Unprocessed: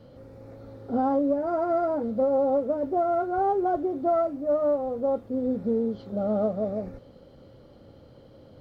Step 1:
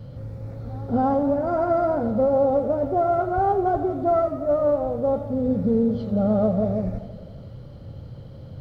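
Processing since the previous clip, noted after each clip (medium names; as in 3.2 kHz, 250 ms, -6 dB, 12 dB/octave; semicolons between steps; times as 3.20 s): resonant low shelf 200 Hz +10 dB, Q 1.5; reverse echo 276 ms -22 dB; modulated delay 86 ms, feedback 71%, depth 82 cents, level -13 dB; trim +4 dB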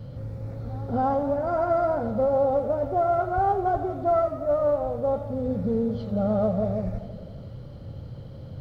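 dynamic bell 290 Hz, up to -7 dB, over -36 dBFS, Q 1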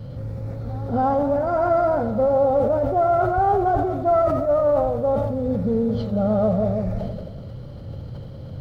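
decay stretcher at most 33 dB/s; trim +3.5 dB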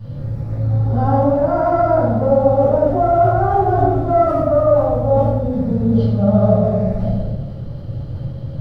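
reverberation RT60 0.85 s, pre-delay 10 ms, DRR -6.5 dB; trim -6.5 dB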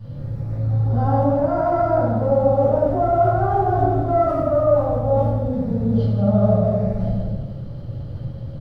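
delay 164 ms -10.5 dB; trim -4 dB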